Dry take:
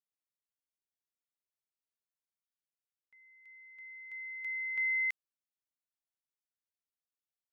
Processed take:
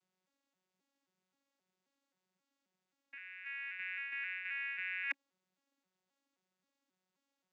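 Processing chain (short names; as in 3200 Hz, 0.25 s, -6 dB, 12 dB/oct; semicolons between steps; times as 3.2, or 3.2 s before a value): arpeggiated vocoder bare fifth, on F#3, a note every 0.265 s; reverse; compressor 10:1, threshold -47 dBFS, peak gain reduction 20 dB; reverse; gain +11 dB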